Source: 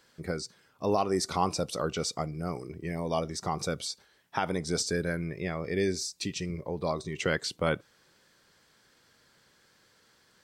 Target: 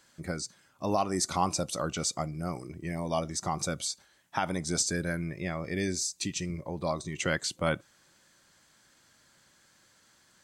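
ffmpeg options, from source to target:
ffmpeg -i in.wav -af "superequalizer=7b=0.447:15b=2:16b=1.58" out.wav

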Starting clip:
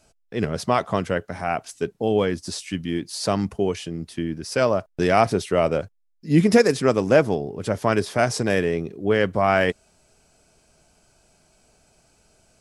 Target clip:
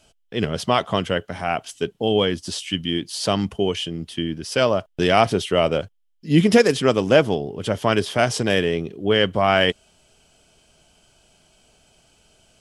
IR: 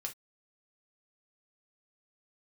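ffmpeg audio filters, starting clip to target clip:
-af "equalizer=frequency=3100:width_type=o:width=0.33:gain=13.5,volume=1dB"

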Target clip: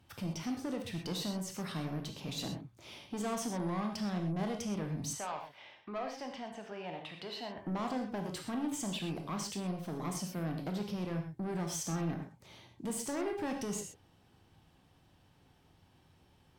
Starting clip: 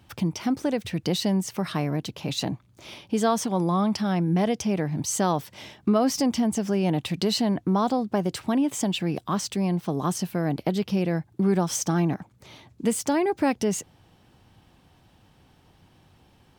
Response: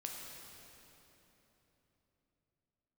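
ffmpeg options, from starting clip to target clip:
-filter_complex "[0:a]asettb=1/sr,asplit=3[link_01][link_02][link_03];[link_01]atrim=end=5.134[link_04];[link_02]atrim=start=5.13:end=7.58,asetpts=PTS-STARTPTS,afade=type=in:duration=0.004:curve=qsin,afade=type=out:start_time=2.446:duration=0.004:curve=qsin,acrossover=split=570 3500:gain=0.141 1 0.0631[link_05][link_06][link_07];[link_05][link_06][link_07]amix=inputs=3:normalize=0[link_08];[link_03]atrim=start=7.576[link_09];[link_04][link_08]acrossfade=duration=0.004:curve1=hsin:curve2=qsin[link_10];[link_10][link_09]acrossfade=duration=0.004:curve1=qsin:curve2=hsin,asoftclip=type=tanh:threshold=-24dB[link_11];[1:a]atrim=start_sample=2205,atrim=end_sample=4410,asetrate=32634,aresample=44100[link_12];[link_11][link_12]afir=irnorm=-1:irlink=0,volume=-6dB"

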